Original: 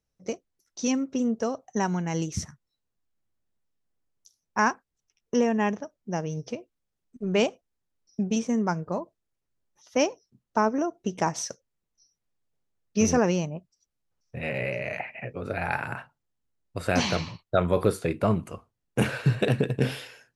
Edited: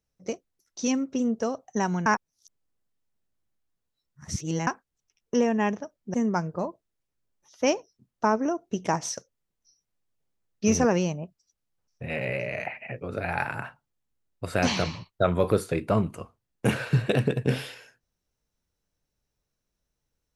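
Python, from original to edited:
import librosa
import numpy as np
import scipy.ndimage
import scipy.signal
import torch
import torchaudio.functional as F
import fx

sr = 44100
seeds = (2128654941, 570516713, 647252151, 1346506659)

y = fx.edit(x, sr, fx.reverse_span(start_s=2.06, length_s=2.61),
    fx.cut(start_s=6.14, length_s=2.33), tone=tone)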